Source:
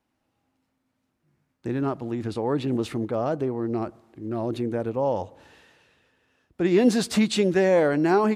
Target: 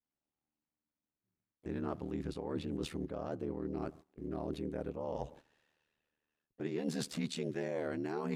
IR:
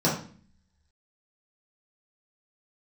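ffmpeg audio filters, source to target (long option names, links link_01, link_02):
-filter_complex "[0:a]agate=range=-17dB:threshold=-46dB:ratio=16:detection=peak,asplit=2[link_01][link_02];[link_02]asetrate=55563,aresample=44100,atempo=0.793701,volume=-18dB[link_03];[link_01][link_03]amix=inputs=2:normalize=0,areverse,acompressor=threshold=-31dB:ratio=6,areverse,adynamicequalizer=threshold=0.00501:dfrequency=880:dqfactor=0.85:tfrequency=880:tqfactor=0.85:attack=5:release=100:ratio=0.375:range=2:mode=cutabove:tftype=bell,aeval=exprs='val(0)*sin(2*PI*38*n/s)':channel_layout=same,volume=-1dB"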